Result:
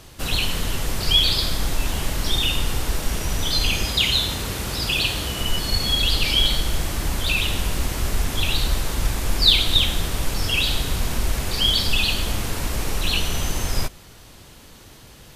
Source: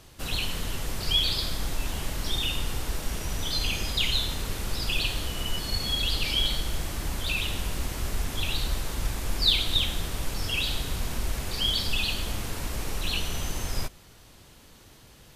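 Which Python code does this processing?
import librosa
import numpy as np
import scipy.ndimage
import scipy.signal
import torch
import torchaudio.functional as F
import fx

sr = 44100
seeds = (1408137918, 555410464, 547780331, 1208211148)

y = fx.highpass(x, sr, hz=54.0, slope=12, at=(3.85, 5.41))
y = y * librosa.db_to_amplitude(7.0)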